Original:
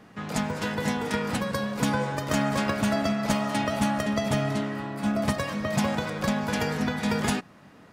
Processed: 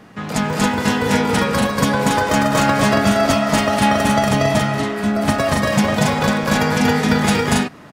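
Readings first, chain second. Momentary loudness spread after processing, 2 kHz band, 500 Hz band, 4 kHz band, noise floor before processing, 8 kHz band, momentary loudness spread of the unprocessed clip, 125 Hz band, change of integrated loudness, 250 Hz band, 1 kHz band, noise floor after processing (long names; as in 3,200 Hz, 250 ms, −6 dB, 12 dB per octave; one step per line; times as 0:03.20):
4 LU, +11.0 dB, +11.0 dB, +11.0 dB, −51 dBFS, +11.5 dB, 4 LU, +10.0 dB, +10.5 dB, +9.5 dB, +12.0 dB, −38 dBFS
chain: loudspeakers that aren't time-aligned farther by 81 metres −1 dB, 95 metres −2 dB
level +7.5 dB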